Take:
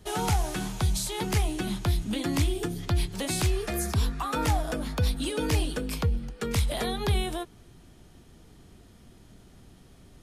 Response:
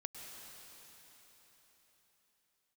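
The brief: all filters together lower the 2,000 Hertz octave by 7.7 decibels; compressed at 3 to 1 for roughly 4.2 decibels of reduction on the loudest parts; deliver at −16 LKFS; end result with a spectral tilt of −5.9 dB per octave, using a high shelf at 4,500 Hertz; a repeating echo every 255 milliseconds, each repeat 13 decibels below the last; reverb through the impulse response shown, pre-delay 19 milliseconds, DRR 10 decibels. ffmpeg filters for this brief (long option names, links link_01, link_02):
-filter_complex "[0:a]equalizer=frequency=2000:width_type=o:gain=-9,highshelf=frequency=4500:gain=-7,acompressor=threshold=-26dB:ratio=3,aecho=1:1:255|510|765:0.224|0.0493|0.0108,asplit=2[link_01][link_02];[1:a]atrim=start_sample=2205,adelay=19[link_03];[link_02][link_03]afir=irnorm=-1:irlink=0,volume=-7.5dB[link_04];[link_01][link_04]amix=inputs=2:normalize=0,volume=15.5dB"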